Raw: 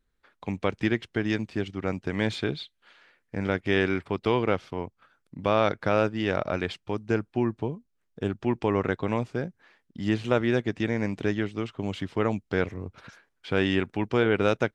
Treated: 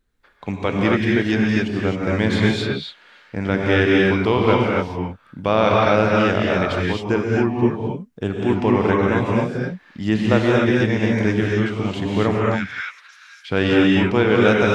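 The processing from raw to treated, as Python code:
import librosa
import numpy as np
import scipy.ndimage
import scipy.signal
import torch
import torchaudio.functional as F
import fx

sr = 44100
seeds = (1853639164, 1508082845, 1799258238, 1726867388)

y = fx.highpass(x, sr, hz=1400.0, slope=24, at=(12.51, 13.49), fade=0.02)
y = fx.rev_gated(y, sr, seeds[0], gate_ms=290, shape='rising', drr_db=-3.0)
y = y * librosa.db_to_amplitude(4.5)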